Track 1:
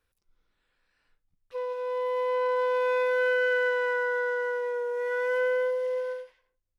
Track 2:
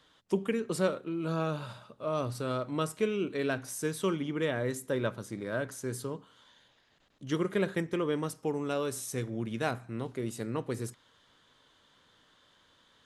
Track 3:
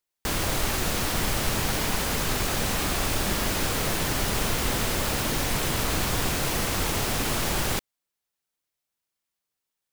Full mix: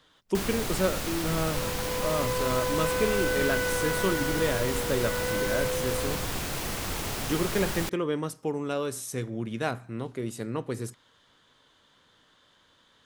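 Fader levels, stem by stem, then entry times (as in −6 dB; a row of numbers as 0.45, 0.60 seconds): −4.0, +2.0, −6.0 decibels; 0.00, 0.00, 0.10 seconds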